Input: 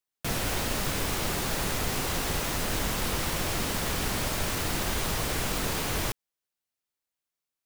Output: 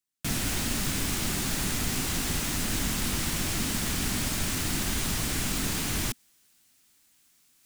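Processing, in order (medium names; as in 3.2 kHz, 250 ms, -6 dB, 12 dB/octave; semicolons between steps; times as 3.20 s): ten-band graphic EQ 250 Hz +6 dB, 500 Hz -9 dB, 1 kHz -4 dB, 8 kHz +4 dB; reverse; upward compressor, threshold -44 dBFS; reverse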